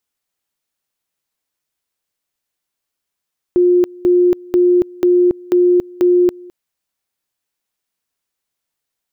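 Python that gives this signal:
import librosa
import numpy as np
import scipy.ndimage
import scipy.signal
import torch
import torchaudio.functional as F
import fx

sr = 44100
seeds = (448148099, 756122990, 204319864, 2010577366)

y = fx.two_level_tone(sr, hz=356.0, level_db=-8.0, drop_db=24.5, high_s=0.28, low_s=0.21, rounds=6)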